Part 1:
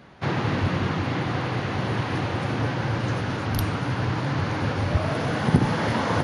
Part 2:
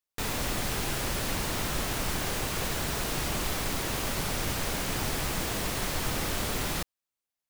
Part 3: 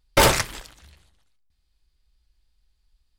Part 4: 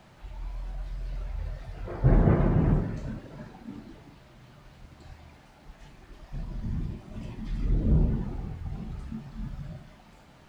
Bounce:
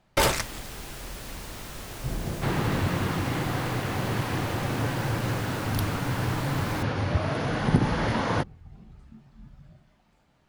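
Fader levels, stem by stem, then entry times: -2.5, -9.0, -6.0, -11.5 dB; 2.20, 0.00, 0.00, 0.00 s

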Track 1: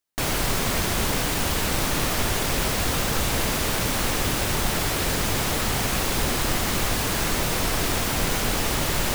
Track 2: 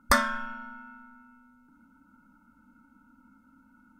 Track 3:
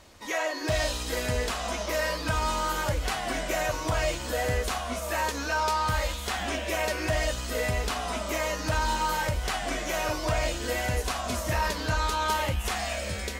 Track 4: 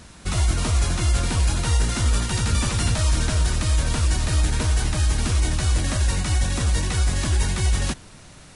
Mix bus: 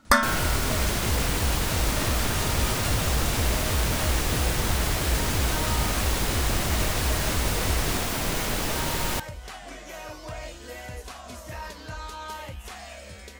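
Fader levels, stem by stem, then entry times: -3.5, +3.0, -10.0, -7.5 dB; 0.05, 0.00, 0.00, 0.05 s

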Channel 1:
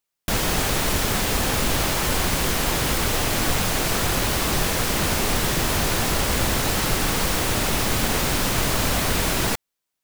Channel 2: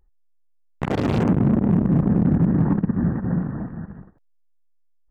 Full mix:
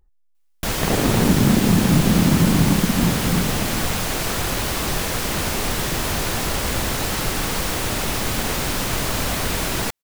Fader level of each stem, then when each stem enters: -1.0, +1.5 dB; 0.35, 0.00 s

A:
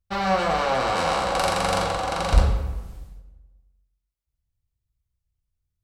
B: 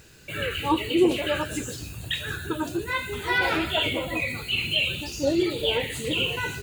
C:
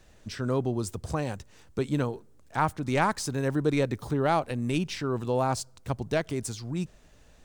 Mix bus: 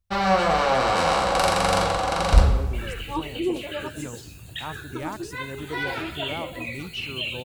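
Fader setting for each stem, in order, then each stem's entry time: +2.0, -6.0, -10.0 dB; 0.00, 2.45, 2.05 s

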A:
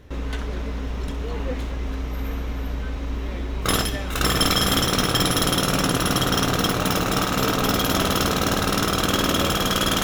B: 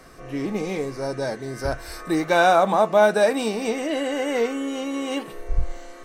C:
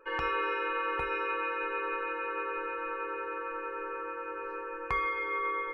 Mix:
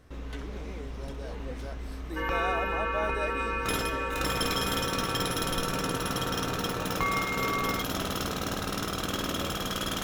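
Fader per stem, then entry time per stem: -10.5, -17.5, +1.0 dB; 0.00, 0.00, 2.10 s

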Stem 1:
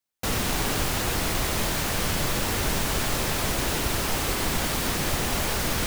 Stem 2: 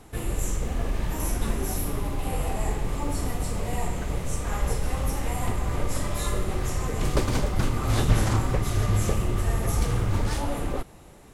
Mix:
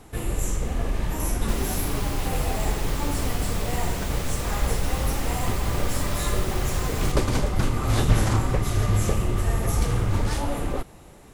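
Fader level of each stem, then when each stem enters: -8.5, +1.5 dB; 1.25, 0.00 s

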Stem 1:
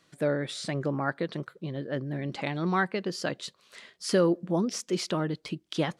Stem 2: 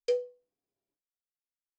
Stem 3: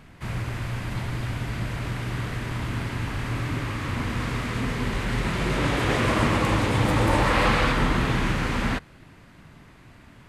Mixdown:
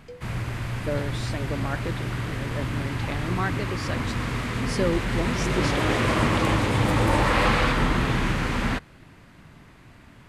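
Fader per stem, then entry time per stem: -2.0, -14.5, 0.0 dB; 0.65, 0.00, 0.00 s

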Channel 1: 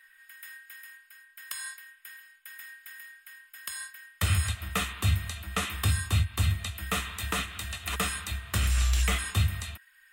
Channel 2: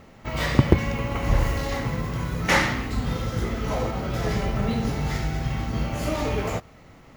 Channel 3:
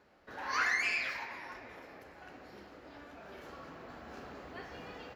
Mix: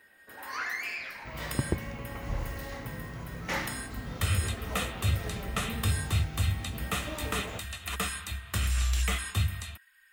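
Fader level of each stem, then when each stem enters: -2.5, -12.5, -3.5 dB; 0.00, 1.00, 0.00 s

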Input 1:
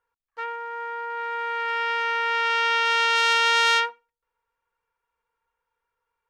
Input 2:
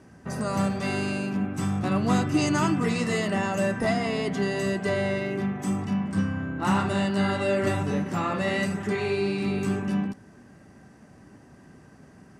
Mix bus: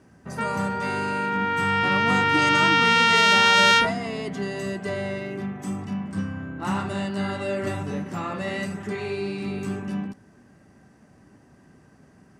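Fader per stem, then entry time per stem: +3.0, -3.0 dB; 0.00, 0.00 s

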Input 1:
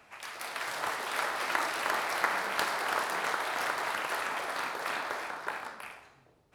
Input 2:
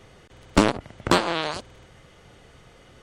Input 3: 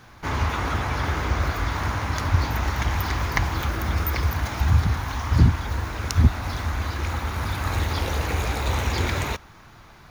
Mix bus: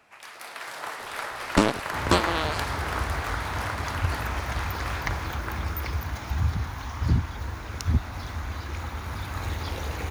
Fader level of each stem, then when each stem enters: -1.5, -2.5, -6.5 dB; 0.00, 1.00, 1.70 s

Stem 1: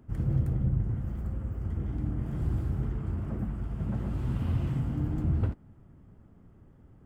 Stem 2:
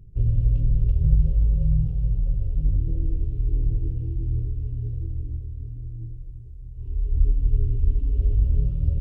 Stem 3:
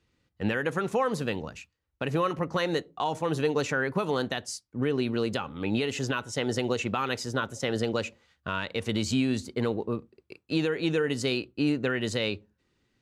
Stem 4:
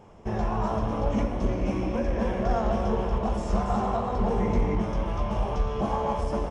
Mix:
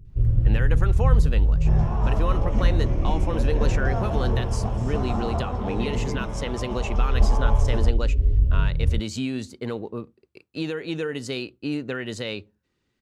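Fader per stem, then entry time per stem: -5.5, +1.0, -2.0, -3.5 dB; 0.10, 0.00, 0.05, 1.40 s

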